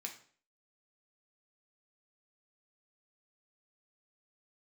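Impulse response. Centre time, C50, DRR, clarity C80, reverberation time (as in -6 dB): 15 ms, 10.0 dB, 1.5 dB, 14.0 dB, 0.50 s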